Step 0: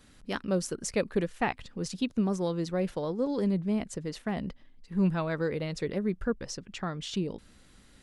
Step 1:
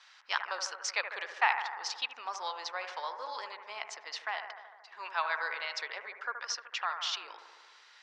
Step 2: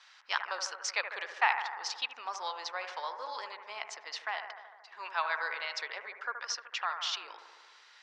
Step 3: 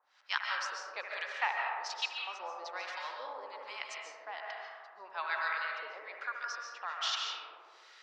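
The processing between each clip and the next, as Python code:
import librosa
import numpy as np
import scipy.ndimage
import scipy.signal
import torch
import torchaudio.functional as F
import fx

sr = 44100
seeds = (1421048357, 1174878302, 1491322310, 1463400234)

y1 = scipy.signal.sosfilt(scipy.signal.ellip(3, 1.0, 60, [890.0, 5600.0], 'bandpass', fs=sr, output='sos'), x)
y1 = fx.echo_bbd(y1, sr, ms=75, stages=1024, feedback_pct=72, wet_db=-8)
y1 = F.gain(torch.from_numpy(y1), 6.0).numpy()
y2 = y1
y3 = fx.harmonic_tremolo(y2, sr, hz=1.2, depth_pct=100, crossover_hz=860.0)
y3 = fx.rev_freeverb(y3, sr, rt60_s=1.6, hf_ratio=0.35, predelay_ms=100, drr_db=0.5)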